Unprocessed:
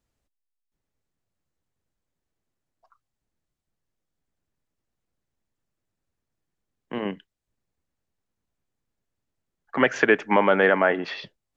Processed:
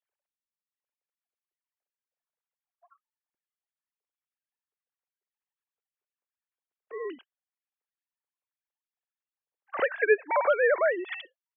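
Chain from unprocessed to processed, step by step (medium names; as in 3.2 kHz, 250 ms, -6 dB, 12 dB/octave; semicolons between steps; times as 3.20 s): formants replaced by sine waves; in parallel at 0 dB: compression, threshold -29 dBFS, peak gain reduction 17 dB; on the sum: trim -6.5 dB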